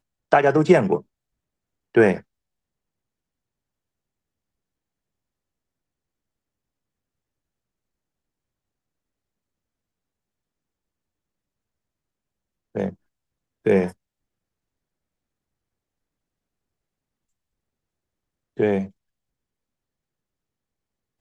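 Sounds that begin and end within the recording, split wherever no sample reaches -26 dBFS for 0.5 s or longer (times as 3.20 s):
1.97–2.17 s
12.76–12.89 s
13.66–13.88 s
18.59–18.85 s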